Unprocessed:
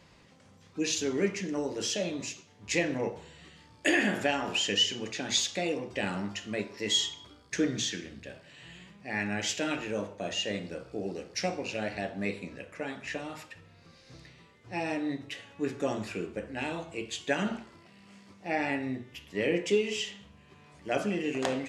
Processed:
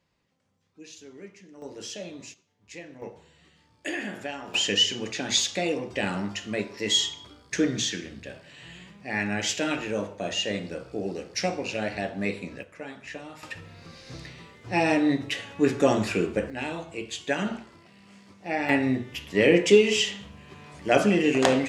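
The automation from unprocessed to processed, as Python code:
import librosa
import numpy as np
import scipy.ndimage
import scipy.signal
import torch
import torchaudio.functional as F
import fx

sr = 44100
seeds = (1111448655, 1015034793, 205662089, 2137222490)

y = fx.gain(x, sr, db=fx.steps((0.0, -16.0), (1.62, -6.0), (2.34, -14.0), (3.02, -6.5), (4.54, 4.0), (12.63, -2.5), (13.43, 10.0), (16.5, 2.0), (18.69, 9.5)))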